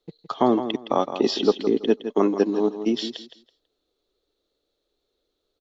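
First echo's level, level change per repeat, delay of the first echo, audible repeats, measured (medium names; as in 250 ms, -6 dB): -10.5 dB, -13.5 dB, 164 ms, 2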